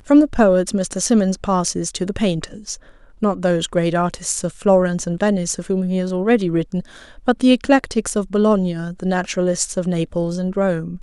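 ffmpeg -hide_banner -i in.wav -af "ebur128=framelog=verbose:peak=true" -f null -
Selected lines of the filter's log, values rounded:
Integrated loudness:
  I:         -18.8 LUFS
  Threshold: -29.1 LUFS
Loudness range:
  LRA:         2.2 LU
  Threshold: -39.3 LUFS
  LRA low:   -20.5 LUFS
  LRA high:  -18.4 LUFS
True peak:
  Peak:       -2.3 dBFS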